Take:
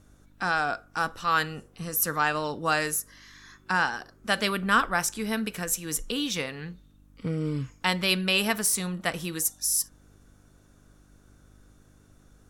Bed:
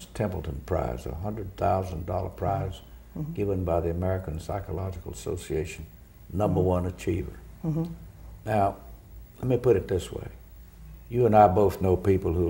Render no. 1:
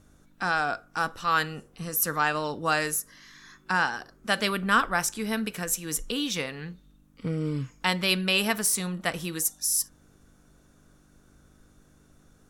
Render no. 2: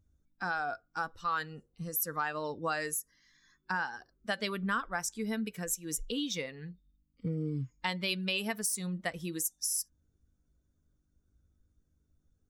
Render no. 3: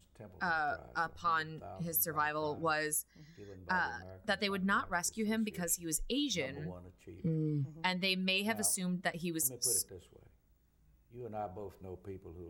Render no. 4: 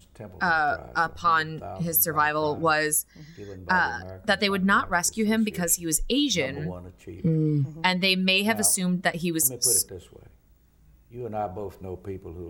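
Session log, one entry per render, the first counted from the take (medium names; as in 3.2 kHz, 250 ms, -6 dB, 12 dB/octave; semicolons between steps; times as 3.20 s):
de-hum 50 Hz, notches 2
expander on every frequency bin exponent 1.5; compression 3:1, threshold -31 dBFS, peak gain reduction 10.5 dB
add bed -24 dB
trim +11 dB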